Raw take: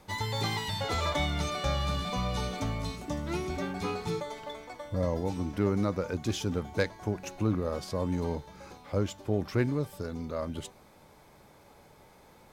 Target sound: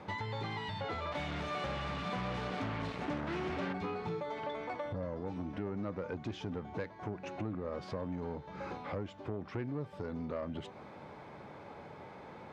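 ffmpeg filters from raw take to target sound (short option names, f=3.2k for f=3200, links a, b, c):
-filter_complex "[0:a]acompressor=threshold=-41dB:ratio=6,asoftclip=type=tanh:threshold=-38dB,asplit=3[a][b][c];[a]afade=t=out:st=1.11:d=0.02[d];[b]aeval=exprs='0.0126*(cos(1*acos(clip(val(0)/0.0126,-1,1)))-cos(1*PI/2))+0.00447*(cos(7*acos(clip(val(0)/0.0126,-1,1)))-cos(7*PI/2))':c=same,afade=t=in:st=1.11:d=0.02,afade=t=out:st=3.72:d=0.02[e];[c]afade=t=in:st=3.72:d=0.02[f];[d][e][f]amix=inputs=3:normalize=0,highpass=100,lowpass=2.5k,volume=8dB"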